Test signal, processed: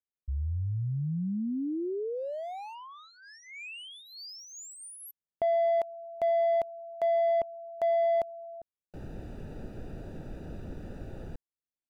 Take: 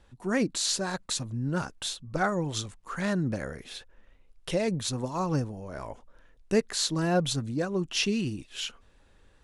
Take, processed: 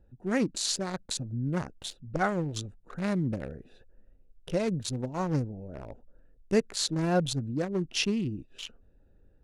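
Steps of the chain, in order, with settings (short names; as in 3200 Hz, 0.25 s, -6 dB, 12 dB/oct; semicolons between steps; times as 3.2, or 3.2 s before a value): Wiener smoothing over 41 samples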